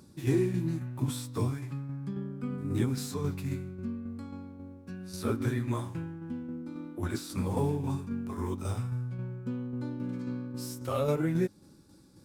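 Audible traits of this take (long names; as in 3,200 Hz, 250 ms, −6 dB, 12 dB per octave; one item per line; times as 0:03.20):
tremolo saw down 3.7 Hz, depth 45%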